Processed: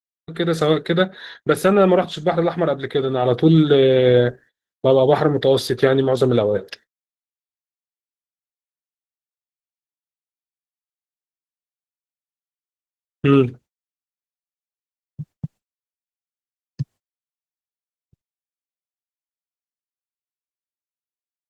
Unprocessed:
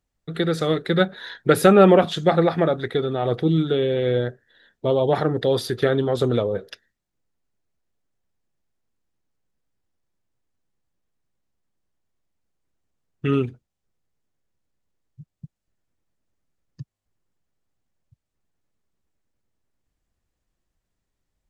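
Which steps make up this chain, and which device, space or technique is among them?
video call (HPF 110 Hz 6 dB/oct; AGC gain up to 15.5 dB; gate -39 dBFS, range -43 dB; gain -2 dB; Opus 16 kbps 48000 Hz)

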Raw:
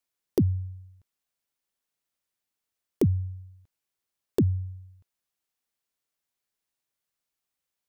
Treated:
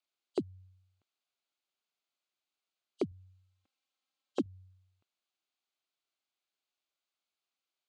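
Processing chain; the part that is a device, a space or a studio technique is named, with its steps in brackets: hearing aid with frequency lowering (nonlinear frequency compression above 2800 Hz 1.5:1; compressor 3:1, threshold -25 dBFS, peak gain reduction 5.5 dB; speaker cabinet 380–5600 Hz, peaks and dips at 490 Hz -8 dB, 940 Hz -6 dB, 1800 Hz -10 dB, 5500 Hz -9 dB); 3.11–4.46 comb 3.8 ms, depth 76%; gain +1.5 dB

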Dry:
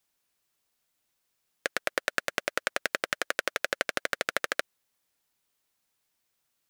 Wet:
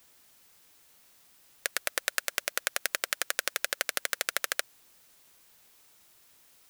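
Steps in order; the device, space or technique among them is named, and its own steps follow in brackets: turntable without a phono preamp (RIAA curve recording; white noise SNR 25 dB); gain -4.5 dB

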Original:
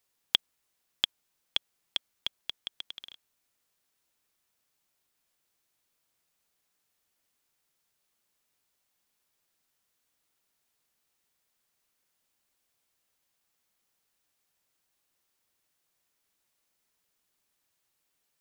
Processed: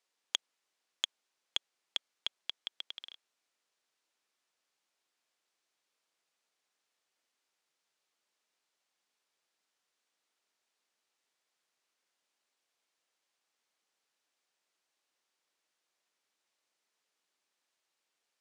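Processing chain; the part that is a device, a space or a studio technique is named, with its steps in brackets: public-address speaker with an overloaded transformer (core saturation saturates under 3500 Hz; BPF 320–6900 Hz); gain -1.5 dB

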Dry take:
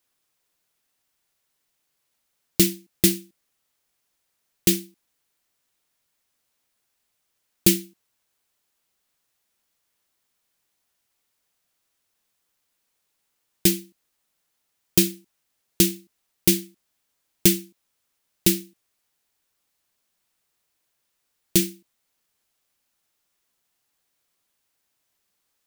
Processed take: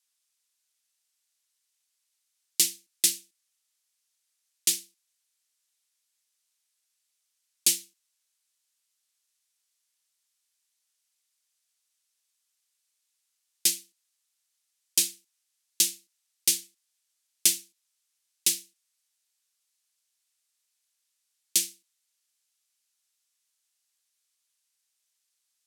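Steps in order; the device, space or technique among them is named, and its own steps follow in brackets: piezo pickup straight into a mixer (LPF 8300 Hz 12 dB/oct; differentiator); gain +3.5 dB

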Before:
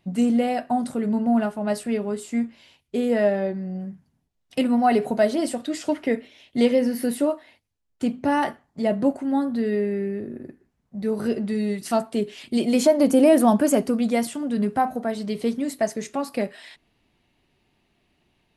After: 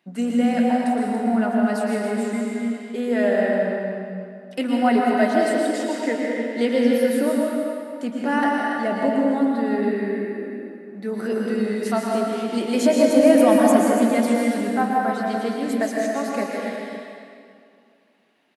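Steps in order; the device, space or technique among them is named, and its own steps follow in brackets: stadium PA (HPF 200 Hz 24 dB/oct; bell 1600 Hz +7.5 dB 0.71 oct; loudspeakers at several distances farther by 54 m -10 dB, 97 m -10 dB; reverb RT60 2.3 s, pre-delay 0.107 s, DRR -1.5 dB); gain -3 dB

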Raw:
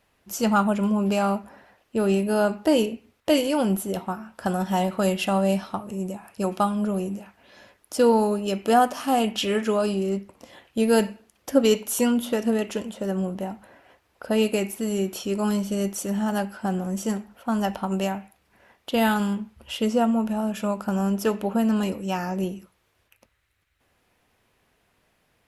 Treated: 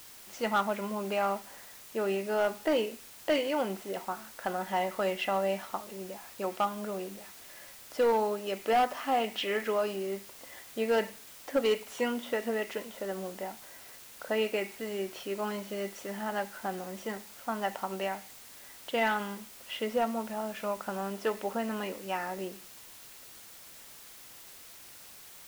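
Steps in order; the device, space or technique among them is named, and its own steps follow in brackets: drive-through speaker (BPF 380–3400 Hz; bell 2000 Hz +9 dB 0.25 oct; hard clip -16 dBFS, distortion -18 dB; white noise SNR 17 dB); gain -4.5 dB

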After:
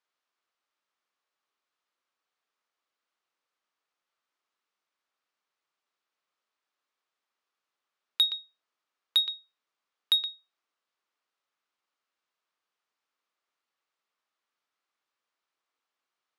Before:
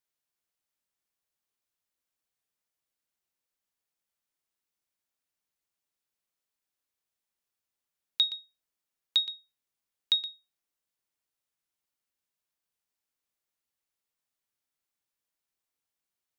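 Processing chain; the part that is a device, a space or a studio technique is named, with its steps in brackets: intercom (BPF 320–4300 Hz; bell 1200 Hz +7 dB 0.51 oct; soft clip -20.5 dBFS, distortion -17 dB); gain +5.5 dB

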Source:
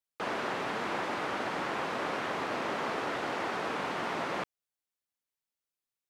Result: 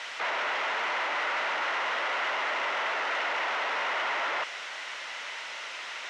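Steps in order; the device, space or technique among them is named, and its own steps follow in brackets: home computer beeper (infinite clipping; speaker cabinet 570–5200 Hz, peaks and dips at 610 Hz +5 dB, 950 Hz +5 dB, 1400 Hz +6 dB, 2000 Hz +9 dB, 2800 Hz +5 dB, 4600 Hz -5 dB); gain +2 dB

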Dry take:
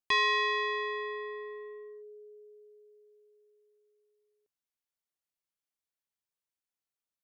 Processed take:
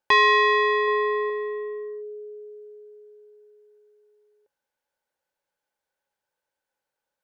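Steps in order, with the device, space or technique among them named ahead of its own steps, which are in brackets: 0.87–1.3 dynamic EQ 830 Hz, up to +4 dB, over -47 dBFS, Q 1.1; inside a helmet (high shelf 5700 Hz -6 dB; small resonant body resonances 550/840/1500 Hz, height 16 dB, ringing for 30 ms); gain +6.5 dB

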